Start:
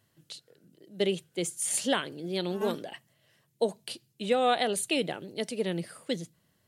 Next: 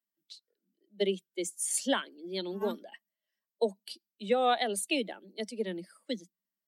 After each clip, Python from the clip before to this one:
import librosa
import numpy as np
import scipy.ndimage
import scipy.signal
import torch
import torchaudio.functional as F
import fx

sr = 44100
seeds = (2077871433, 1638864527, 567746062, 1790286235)

y = fx.bin_expand(x, sr, power=1.5)
y = scipy.signal.sosfilt(scipy.signal.butter(16, 190.0, 'highpass', fs=sr, output='sos'), y)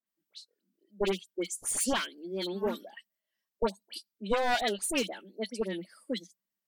y = np.minimum(x, 2.0 * 10.0 ** (-26.0 / 20.0) - x)
y = fx.dispersion(y, sr, late='highs', ms=66.0, hz=1900.0)
y = y * librosa.db_to_amplitude(1.5)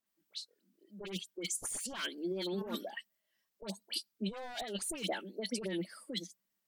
y = fx.over_compress(x, sr, threshold_db=-38.0, ratio=-1.0)
y = y * librosa.db_to_amplitude(-1.0)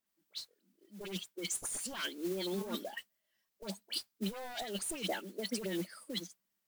y = fx.mod_noise(x, sr, seeds[0], snr_db=15)